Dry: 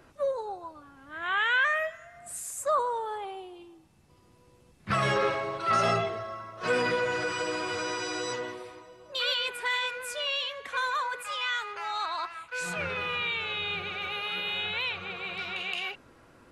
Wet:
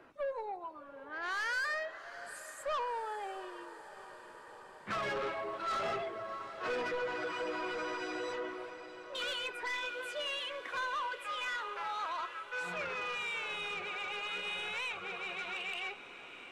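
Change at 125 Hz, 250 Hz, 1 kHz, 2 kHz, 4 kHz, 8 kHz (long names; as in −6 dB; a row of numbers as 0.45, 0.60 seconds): −17.5, −7.5, −7.0, −7.0, −9.0, −11.5 decibels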